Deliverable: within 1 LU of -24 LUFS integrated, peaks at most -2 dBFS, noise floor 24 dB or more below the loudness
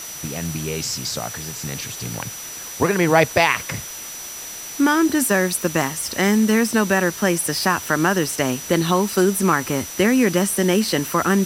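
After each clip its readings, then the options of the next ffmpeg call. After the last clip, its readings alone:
steady tone 5900 Hz; tone level -34 dBFS; noise floor -34 dBFS; noise floor target -44 dBFS; loudness -20.0 LUFS; peak -2.0 dBFS; loudness target -24.0 LUFS
-> -af "bandreject=f=5.9k:w=30"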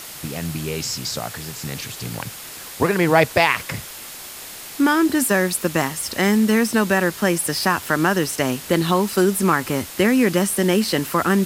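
steady tone none; noise floor -36 dBFS; noise floor target -44 dBFS
-> -af "afftdn=nr=8:nf=-36"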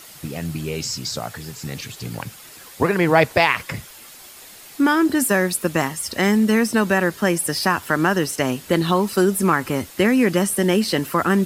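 noise floor -42 dBFS; noise floor target -44 dBFS
-> -af "afftdn=nr=6:nf=-42"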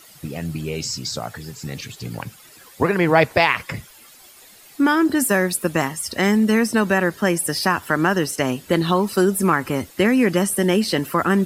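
noise floor -47 dBFS; loudness -19.5 LUFS; peak -2.0 dBFS; loudness target -24.0 LUFS
-> -af "volume=-4.5dB"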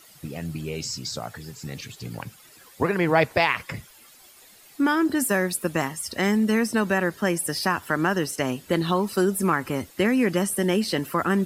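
loudness -24.0 LUFS; peak -6.5 dBFS; noise floor -51 dBFS

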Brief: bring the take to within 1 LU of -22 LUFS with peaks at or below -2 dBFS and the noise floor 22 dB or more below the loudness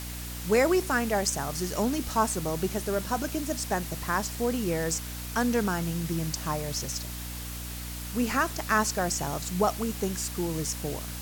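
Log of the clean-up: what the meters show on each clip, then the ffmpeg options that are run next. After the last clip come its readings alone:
hum 60 Hz; harmonics up to 300 Hz; hum level -36 dBFS; noise floor -37 dBFS; noise floor target -51 dBFS; loudness -29.0 LUFS; peak -11.5 dBFS; loudness target -22.0 LUFS
-> -af "bandreject=f=60:t=h:w=6,bandreject=f=120:t=h:w=6,bandreject=f=180:t=h:w=6,bandreject=f=240:t=h:w=6,bandreject=f=300:t=h:w=6"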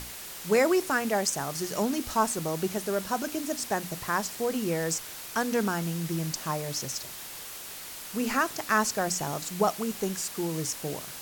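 hum none; noise floor -41 dBFS; noise floor target -52 dBFS
-> -af "afftdn=nr=11:nf=-41"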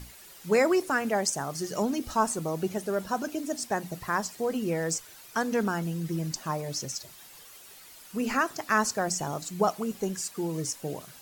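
noise floor -50 dBFS; noise floor target -52 dBFS
-> -af "afftdn=nr=6:nf=-50"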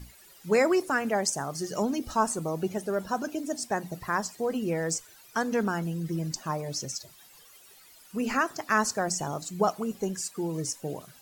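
noise floor -54 dBFS; loudness -29.5 LUFS; peak -12.5 dBFS; loudness target -22.0 LUFS
-> -af "volume=7.5dB"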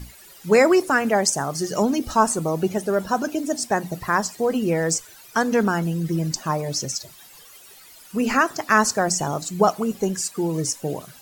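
loudness -22.0 LUFS; peak -5.0 dBFS; noise floor -47 dBFS

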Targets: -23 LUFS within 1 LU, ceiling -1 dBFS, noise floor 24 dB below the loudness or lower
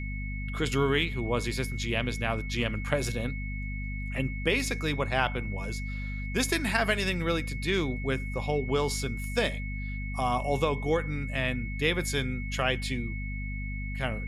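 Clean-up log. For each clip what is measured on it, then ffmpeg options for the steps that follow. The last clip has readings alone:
hum 50 Hz; harmonics up to 250 Hz; hum level -32 dBFS; steady tone 2200 Hz; tone level -40 dBFS; loudness -30.0 LUFS; peak -9.5 dBFS; loudness target -23.0 LUFS
-> -af "bandreject=f=50:t=h:w=6,bandreject=f=100:t=h:w=6,bandreject=f=150:t=h:w=6,bandreject=f=200:t=h:w=6,bandreject=f=250:t=h:w=6"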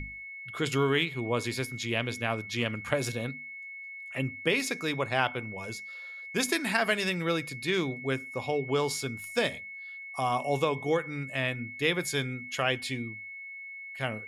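hum none; steady tone 2200 Hz; tone level -40 dBFS
-> -af "bandreject=f=2.2k:w=30"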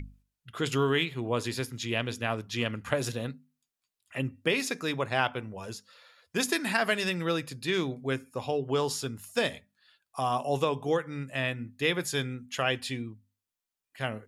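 steady tone none; loudness -30.5 LUFS; peak -10.0 dBFS; loudness target -23.0 LUFS
-> -af "volume=7.5dB"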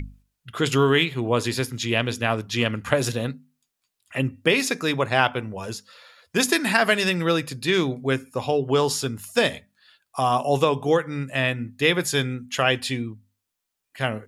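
loudness -23.0 LUFS; peak -2.5 dBFS; noise floor -81 dBFS

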